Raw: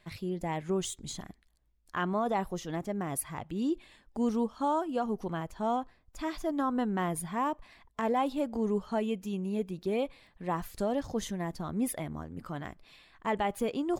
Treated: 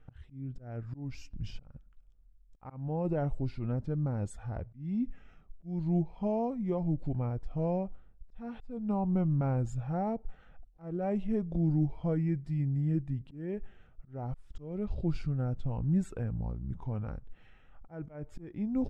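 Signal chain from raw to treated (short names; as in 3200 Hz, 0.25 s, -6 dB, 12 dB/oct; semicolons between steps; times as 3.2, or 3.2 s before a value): RIAA curve playback; notch 1500 Hz, Q 26; auto swell 0.259 s; speed mistake 45 rpm record played at 33 rpm; gain -4.5 dB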